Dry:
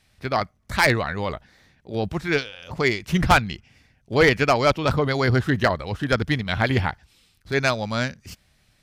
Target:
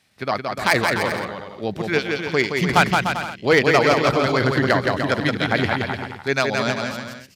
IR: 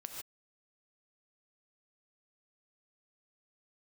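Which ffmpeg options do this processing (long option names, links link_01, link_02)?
-filter_complex "[0:a]highpass=150,atempo=1.2,asplit=2[link_01][link_02];[link_02]aecho=0:1:170|297.5|393.1|464.8|518.6:0.631|0.398|0.251|0.158|0.1[link_03];[link_01][link_03]amix=inputs=2:normalize=0,volume=1dB"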